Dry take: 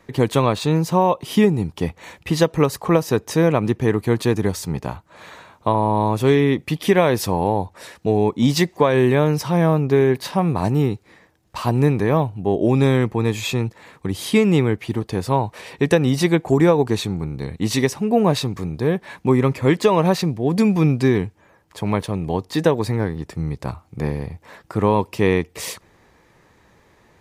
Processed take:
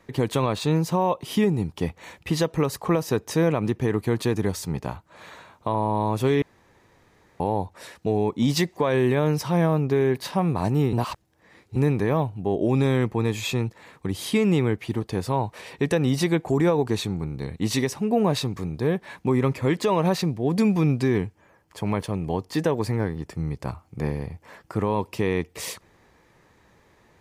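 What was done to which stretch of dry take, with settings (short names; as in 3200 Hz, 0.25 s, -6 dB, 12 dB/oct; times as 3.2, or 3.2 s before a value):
6.42–7.4 room tone
10.93–11.76 reverse
21.06–24.85 notch 3800 Hz
whole clip: limiter -8.5 dBFS; gain -3.5 dB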